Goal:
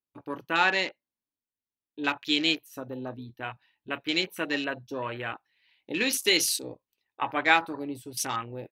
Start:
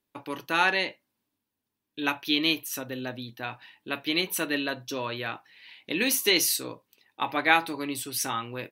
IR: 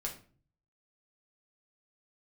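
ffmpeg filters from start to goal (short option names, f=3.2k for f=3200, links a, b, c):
-af "asubboost=boost=4:cutoff=73,afwtdn=0.0158"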